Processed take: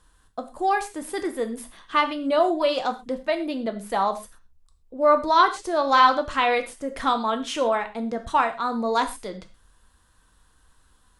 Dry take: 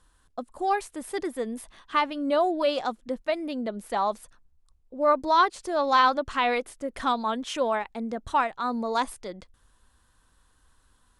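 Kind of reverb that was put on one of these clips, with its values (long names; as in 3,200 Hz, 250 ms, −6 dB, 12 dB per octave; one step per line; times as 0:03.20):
reverb whose tail is shaped and stops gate 150 ms falling, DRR 6.5 dB
level +2.5 dB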